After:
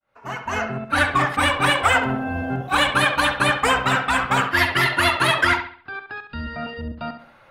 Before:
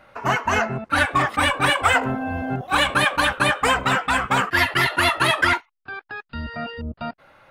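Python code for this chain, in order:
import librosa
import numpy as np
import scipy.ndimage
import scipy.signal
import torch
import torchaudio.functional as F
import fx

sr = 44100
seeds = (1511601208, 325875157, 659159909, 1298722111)

y = fx.fade_in_head(x, sr, length_s=1.0)
y = fx.echo_bbd(y, sr, ms=68, stages=2048, feedback_pct=37, wet_db=-9.0)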